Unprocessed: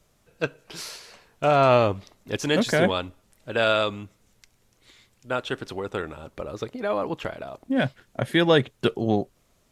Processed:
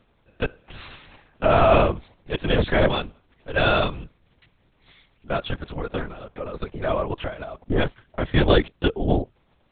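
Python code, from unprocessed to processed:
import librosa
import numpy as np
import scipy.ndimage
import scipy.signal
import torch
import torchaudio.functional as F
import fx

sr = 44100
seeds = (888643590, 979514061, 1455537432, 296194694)

y = fx.lpc_vocoder(x, sr, seeds[0], excitation='whisper', order=8)
y = y * 10.0 ** (2.0 / 20.0)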